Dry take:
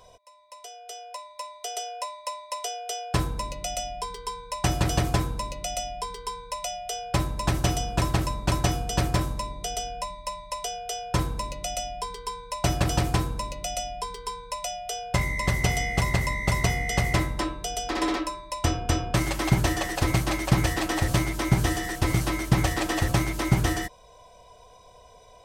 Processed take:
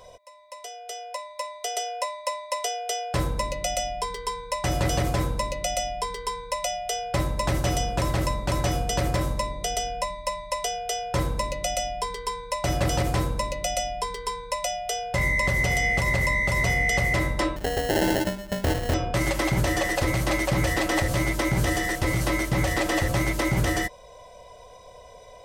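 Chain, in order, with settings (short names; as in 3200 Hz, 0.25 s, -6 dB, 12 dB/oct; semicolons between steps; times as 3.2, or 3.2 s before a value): small resonant body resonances 550/2000 Hz, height 10 dB, ringing for 45 ms; 17.56–18.94 sample-rate reducer 1200 Hz, jitter 0%; limiter -17 dBFS, peak gain reduction 10 dB; gain +3 dB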